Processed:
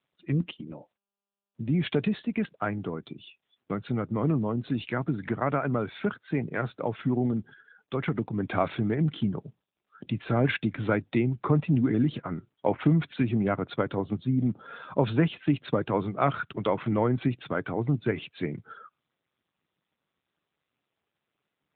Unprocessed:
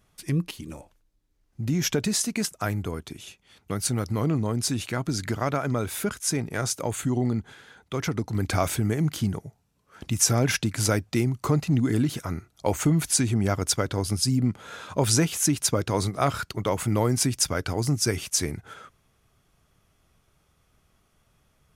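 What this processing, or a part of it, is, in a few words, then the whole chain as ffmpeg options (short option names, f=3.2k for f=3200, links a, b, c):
mobile call with aggressive noise cancelling: -af "highpass=f=120:w=0.5412,highpass=f=120:w=1.3066,afftdn=nr=29:nf=-44" -ar 8000 -c:a libopencore_amrnb -b:a 10200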